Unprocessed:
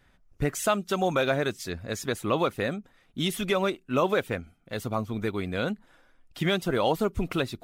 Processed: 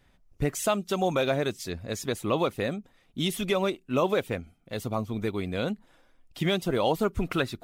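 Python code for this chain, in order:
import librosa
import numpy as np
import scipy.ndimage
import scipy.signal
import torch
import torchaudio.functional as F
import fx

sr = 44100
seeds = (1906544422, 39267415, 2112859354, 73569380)

y = fx.peak_eq(x, sr, hz=1500.0, db=fx.steps((0.0, -5.5), (7.03, 4.0)), octaves=0.69)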